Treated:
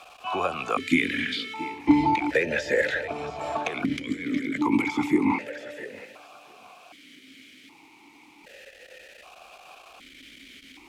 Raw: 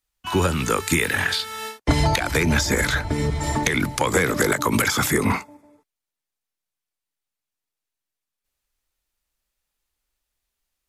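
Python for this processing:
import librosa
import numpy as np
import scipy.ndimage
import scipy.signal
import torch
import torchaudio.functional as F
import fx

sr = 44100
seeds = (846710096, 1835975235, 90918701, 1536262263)

p1 = x + 0.5 * 10.0 ** (-30.0 / 20.0) * np.sign(x)
p2 = fx.over_compress(p1, sr, threshold_db=-27.0, ratio=-1.0, at=(3.85, 4.55))
p3 = p2 + fx.echo_feedback(p2, sr, ms=678, feedback_pct=26, wet_db=-14.0, dry=0)
p4 = fx.vowel_held(p3, sr, hz=1.3)
y = F.gain(torch.from_numpy(p4), 7.5).numpy()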